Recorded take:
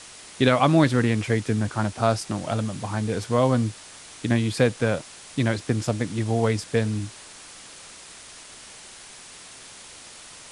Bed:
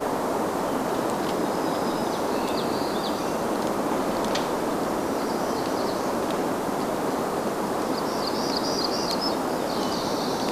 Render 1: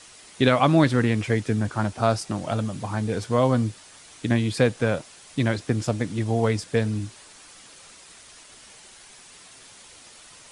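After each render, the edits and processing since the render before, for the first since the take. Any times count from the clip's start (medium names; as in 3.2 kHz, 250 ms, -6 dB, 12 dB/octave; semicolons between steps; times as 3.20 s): noise reduction 6 dB, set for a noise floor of -45 dBFS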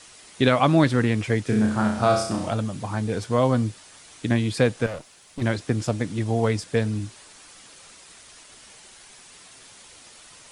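1.44–2.50 s: flutter echo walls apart 5.6 m, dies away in 0.58 s; 4.86–5.42 s: valve stage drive 28 dB, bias 0.75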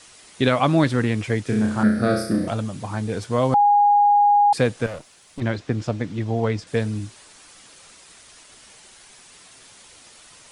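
1.83–2.48 s: FFT filter 110 Hz 0 dB, 220 Hz +7 dB, 510 Hz +6 dB, 920 Hz -19 dB, 1.7 kHz +9 dB, 2.9 kHz -11 dB, 4.5 kHz +1 dB, 7.1 kHz -13 dB, 12 kHz +11 dB; 3.54–4.53 s: bleep 821 Hz -12 dBFS; 5.40–6.67 s: distance through air 98 m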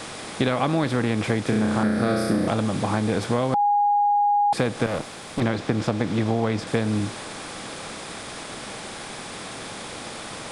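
spectral levelling over time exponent 0.6; compression, threshold -18 dBFS, peak gain reduction 7.5 dB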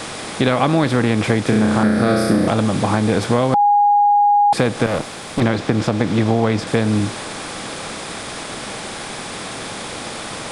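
trim +6.5 dB; peak limiter -3 dBFS, peak gain reduction 2.5 dB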